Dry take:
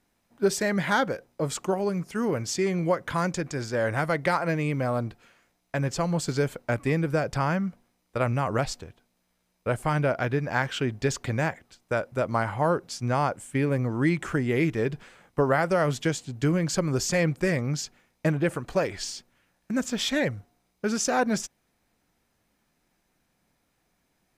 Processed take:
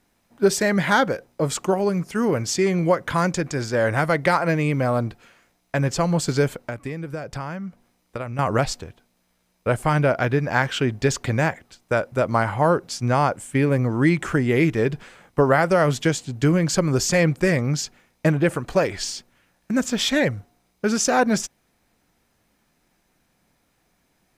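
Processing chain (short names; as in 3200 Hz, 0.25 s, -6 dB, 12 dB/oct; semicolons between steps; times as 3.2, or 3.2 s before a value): 6.53–8.39 compressor 4:1, threshold -35 dBFS, peak gain reduction 12.5 dB; gain +5.5 dB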